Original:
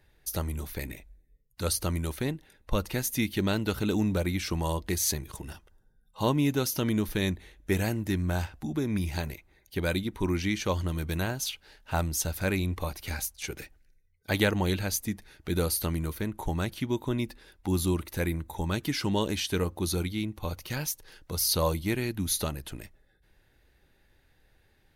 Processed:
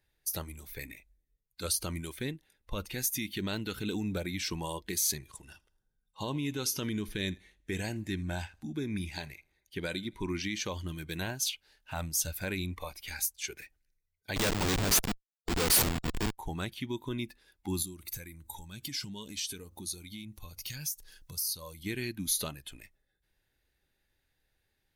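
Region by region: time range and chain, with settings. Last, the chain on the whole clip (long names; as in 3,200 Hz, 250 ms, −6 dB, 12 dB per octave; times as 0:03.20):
0:05.12–0:10.44: low-pass filter 11,000 Hz + repeating echo 81 ms, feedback 43%, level −23 dB
0:14.36–0:16.38: low-shelf EQ 260 Hz −11.5 dB + leveller curve on the samples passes 3 + comparator with hysteresis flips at −21.5 dBFS
0:17.82–0:21.83: bass and treble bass +6 dB, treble +8 dB + downward compressor 10 to 1, threshold −31 dBFS
whole clip: noise reduction from a noise print of the clip's start 9 dB; brickwall limiter −20.5 dBFS; high-shelf EQ 2,400 Hz +8.5 dB; level −5.5 dB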